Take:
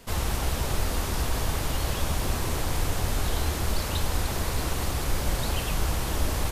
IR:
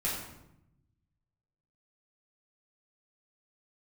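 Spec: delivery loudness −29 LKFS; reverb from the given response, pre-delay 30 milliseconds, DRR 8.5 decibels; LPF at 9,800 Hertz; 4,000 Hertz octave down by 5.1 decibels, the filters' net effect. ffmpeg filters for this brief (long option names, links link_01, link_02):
-filter_complex "[0:a]lowpass=9800,equalizer=frequency=4000:width_type=o:gain=-6.5,asplit=2[link_01][link_02];[1:a]atrim=start_sample=2205,adelay=30[link_03];[link_02][link_03]afir=irnorm=-1:irlink=0,volume=-15dB[link_04];[link_01][link_04]amix=inputs=2:normalize=0"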